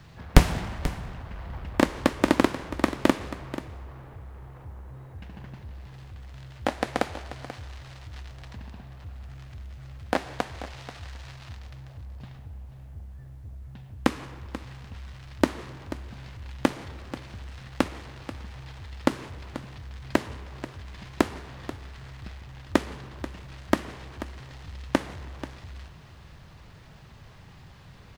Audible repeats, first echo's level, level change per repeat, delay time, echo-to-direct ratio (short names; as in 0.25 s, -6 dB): 1, -14.0 dB, no steady repeat, 0.486 s, -14.0 dB